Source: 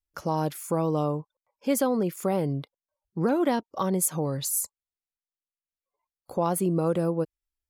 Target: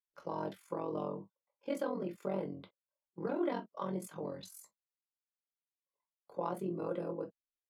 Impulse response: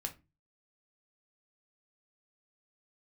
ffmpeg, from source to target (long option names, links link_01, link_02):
-filter_complex "[0:a]tremolo=f=44:d=1,acrossover=split=190 4200:gain=0.0794 1 0.158[link_01][link_02][link_03];[link_01][link_02][link_03]amix=inputs=3:normalize=0[link_04];[1:a]atrim=start_sample=2205,atrim=end_sample=3528,asetrate=52920,aresample=44100[link_05];[link_04][link_05]afir=irnorm=-1:irlink=0,volume=-4.5dB"